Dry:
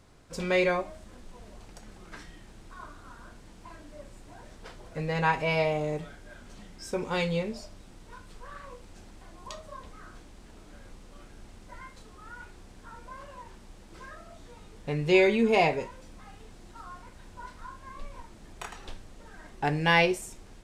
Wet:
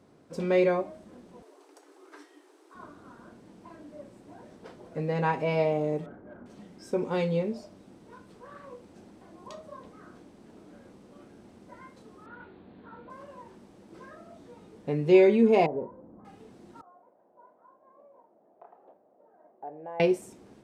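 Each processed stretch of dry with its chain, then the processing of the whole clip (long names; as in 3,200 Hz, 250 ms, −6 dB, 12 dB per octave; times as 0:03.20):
0:01.42–0:02.75: Chebyshev high-pass with heavy ripple 280 Hz, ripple 6 dB + high-shelf EQ 4,200 Hz +9.5 dB
0:06.06–0:06.46: low-pass filter 1,500 Hz 24 dB per octave + leveller curve on the samples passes 1
0:12.26–0:13.10: Butterworth low-pass 4,300 Hz 96 dB per octave + double-tracking delay 21 ms −7 dB + highs frequency-modulated by the lows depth 0.12 ms
0:15.66–0:16.25: low-pass filter 1,100 Hz 24 dB per octave + downward compressor 4 to 1, threshold −30 dBFS
0:16.81–0:20.00: four-pole ladder band-pass 760 Hz, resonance 55% + downward compressor 1.5 to 1, threshold −49 dBFS + spectral tilt −4.5 dB per octave
whole clip: high-pass filter 230 Hz 12 dB per octave; tilt shelving filter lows +8.5 dB, about 720 Hz; notch filter 7,000 Hz, Q 23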